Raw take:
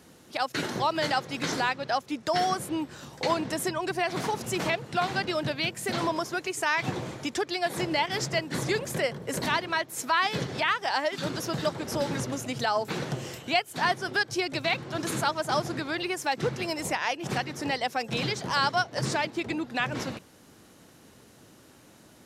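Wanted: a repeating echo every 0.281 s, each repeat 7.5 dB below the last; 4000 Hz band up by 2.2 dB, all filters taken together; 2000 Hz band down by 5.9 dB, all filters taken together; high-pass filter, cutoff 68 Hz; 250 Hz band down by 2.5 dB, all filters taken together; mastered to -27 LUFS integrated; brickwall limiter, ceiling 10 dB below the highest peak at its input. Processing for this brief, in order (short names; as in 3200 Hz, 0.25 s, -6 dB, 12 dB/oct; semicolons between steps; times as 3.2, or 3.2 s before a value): HPF 68 Hz; bell 250 Hz -3.5 dB; bell 2000 Hz -9 dB; bell 4000 Hz +5.5 dB; limiter -22.5 dBFS; feedback echo 0.281 s, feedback 42%, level -7.5 dB; gain +5.5 dB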